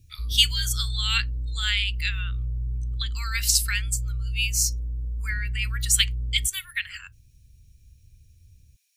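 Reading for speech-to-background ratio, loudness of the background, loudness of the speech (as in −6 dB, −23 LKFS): 6.5 dB, −31.5 LKFS, −25.0 LKFS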